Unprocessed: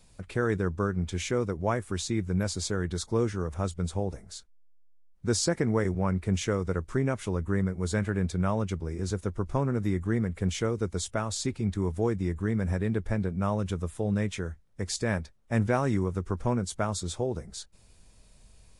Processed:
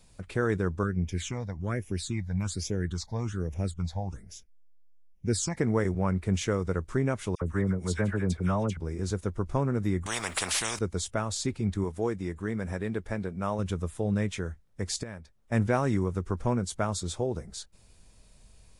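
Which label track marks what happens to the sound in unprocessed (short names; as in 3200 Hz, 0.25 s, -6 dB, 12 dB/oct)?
0.830000	5.570000	phaser stages 8, 1.2 Hz, lowest notch 360–1300 Hz
7.350000	8.770000	dispersion lows, late by 64 ms, half as late at 1700 Hz
10.060000	10.790000	spectral compressor 10:1
11.840000	13.590000	low shelf 190 Hz -9 dB
15.030000	15.520000	compressor 1.5:1, threshold -60 dBFS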